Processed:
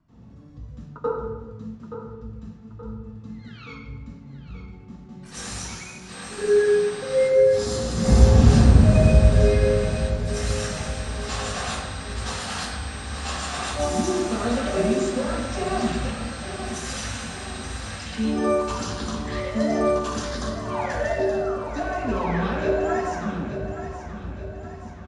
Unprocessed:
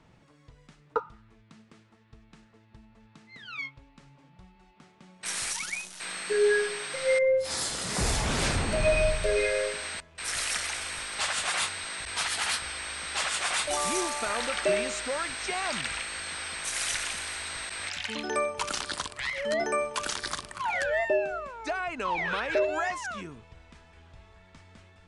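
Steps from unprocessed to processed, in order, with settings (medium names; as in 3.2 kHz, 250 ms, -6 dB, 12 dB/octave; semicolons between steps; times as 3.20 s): feedback delay 875 ms, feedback 49%, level -10.5 dB; reverberation RT60 1.1 s, pre-delay 82 ms, DRR -16 dB; trim -14 dB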